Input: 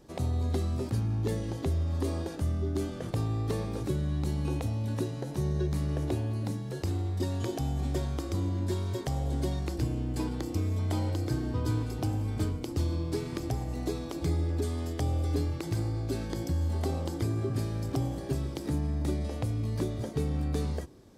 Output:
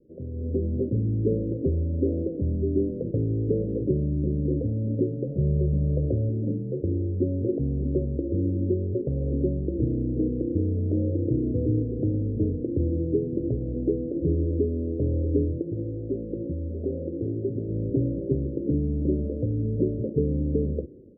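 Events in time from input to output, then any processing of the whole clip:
5.27–6.29 comb 1.5 ms, depth 61%
15.62–17.69 low shelf 370 Hz -6.5 dB
whole clip: steep low-pass 540 Hz 72 dB/oct; low shelf 180 Hz -10 dB; AGC gain up to 11 dB

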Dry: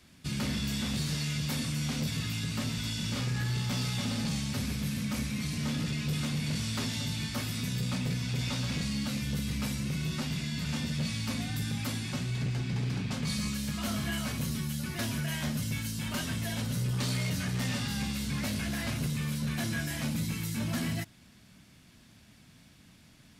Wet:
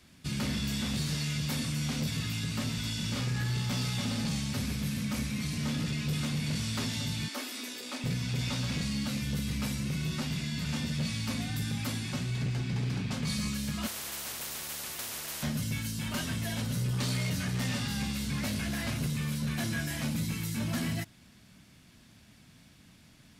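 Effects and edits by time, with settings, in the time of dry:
7.28–8.04 elliptic high-pass 260 Hz
13.87–15.43 spectral compressor 10:1

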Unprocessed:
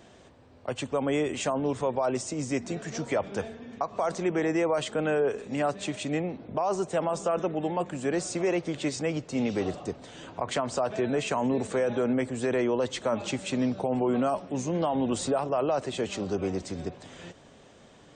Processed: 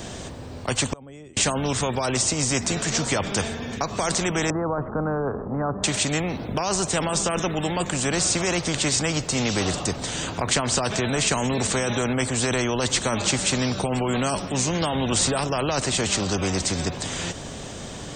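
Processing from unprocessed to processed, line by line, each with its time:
0.92–1.37 flipped gate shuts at -26 dBFS, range -34 dB
4.5–5.84 steep low-pass 1300 Hz 48 dB/oct
whole clip: tone controls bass +14 dB, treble +9 dB; spectral compressor 2:1; gain +5.5 dB

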